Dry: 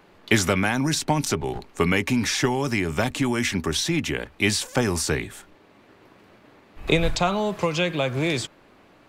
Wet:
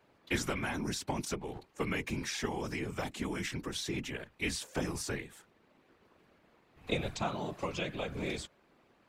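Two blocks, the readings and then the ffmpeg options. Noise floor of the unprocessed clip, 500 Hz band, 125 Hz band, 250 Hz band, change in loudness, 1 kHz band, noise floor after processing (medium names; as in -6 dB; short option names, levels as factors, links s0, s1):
-55 dBFS, -13.0 dB, -13.5 dB, -13.5 dB, -13.0 dB, -12.5 dB, -68 dBFS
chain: -af "highpass=40,afftfilt=real='hypot(re,im)*cos(2*PI*random(0))':imag='hypot(re,im)*sin(2*PI*random(1))':win_size=512:overlap=0.75,volume=0.447"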